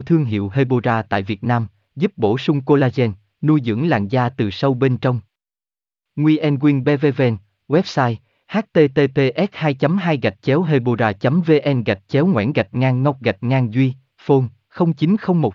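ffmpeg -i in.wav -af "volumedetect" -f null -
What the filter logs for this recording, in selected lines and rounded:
mean_volume: -17.6 dB
max_volume: -1.5 dB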